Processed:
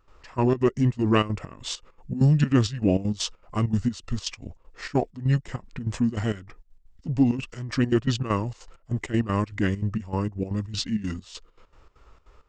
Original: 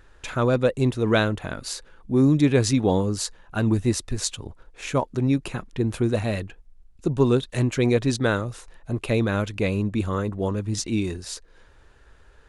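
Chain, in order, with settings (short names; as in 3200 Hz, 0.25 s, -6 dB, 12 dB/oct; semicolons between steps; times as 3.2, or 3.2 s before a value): step gate ".xx..xx.x.xx.xxx" 197 bpm -12 dB; formant shift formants -5 st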